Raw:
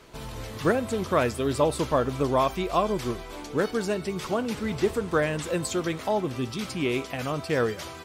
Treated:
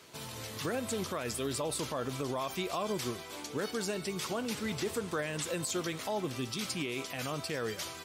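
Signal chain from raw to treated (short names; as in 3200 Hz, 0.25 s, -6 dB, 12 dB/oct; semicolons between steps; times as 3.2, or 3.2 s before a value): HPF 84 Hz 24 dB/oct; high shelf 2500 Hz +10 dB; limiter -18 dBFS, peak gain reduction 11 dB; gain -6.5 dB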